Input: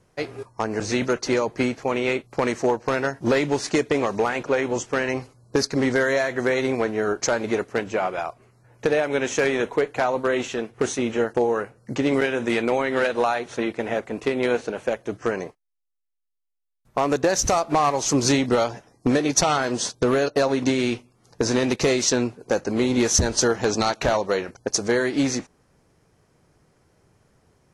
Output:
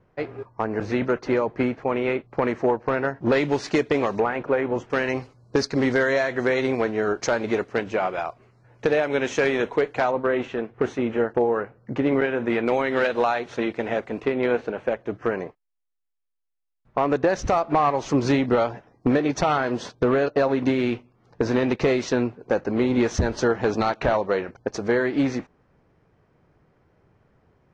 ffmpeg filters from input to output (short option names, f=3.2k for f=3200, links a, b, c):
-af "asetnsamples=n=441:p=0,asendcmd='3.32 lowpass f 4200;4.2 lowpass f 1900;4.9 lowpass f 4600;10.11 lowpass f 2100;12.66 lowpass f 4400;14.22 lowpass f 2500',lowpass=2.1k"